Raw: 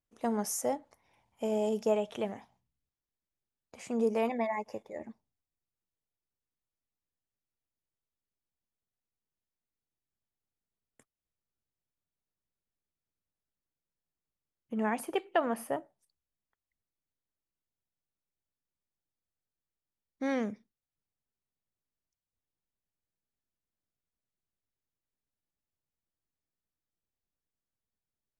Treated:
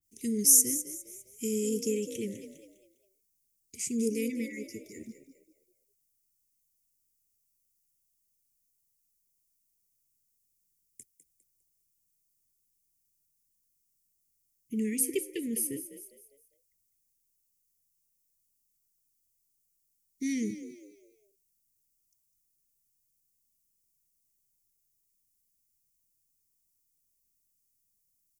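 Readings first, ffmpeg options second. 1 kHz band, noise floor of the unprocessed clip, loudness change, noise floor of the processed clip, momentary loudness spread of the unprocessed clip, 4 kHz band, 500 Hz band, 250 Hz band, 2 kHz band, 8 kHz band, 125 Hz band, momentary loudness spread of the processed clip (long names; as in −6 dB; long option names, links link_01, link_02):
below −40 dB, below −85 dBFS, +4.5 dB, −76 dBFS, 13 LU, +5.5 dB, −4.0 dB, +2.5 dB, −5.0 dB, +16.5 dB, +2.5 dB, 24 LU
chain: -filter_complex "[0:a]equalizer=frequency=110:width_type=o:width=1.2:gain=3.5,aexciter=amount=7.7:drive=3.4:freq=5200,asuperstop=centerf=930:order=20:qfactor=0.61,asplit=5[link_01][link_02][link_03][link_04][link_05];[link_02]adelay=202,afreqshift=46,volume=-12dB[link_06];[link_03]adelay=404,afreqshift=92,volume=-21.1dB[link_07];[link_04]adelay=606,afreqshift=138,volume=-30.2dB[link_08];[link_05]adelay=808,afreqshift=184,volume=-39.4dB[link_09];[link_01][link_06][link_07][link_08][link_09]amix=inputs=5:normalize=0,adynamicequalizer=threshold=0.00224:dfrequency=1700:dqfactor=0.7:tfrequency=1700:tqfactor=0.7:attack=5:release=100:ratio=0.375:range=2:mode=cutabove:tftype=highshelf,volume=1.5dB"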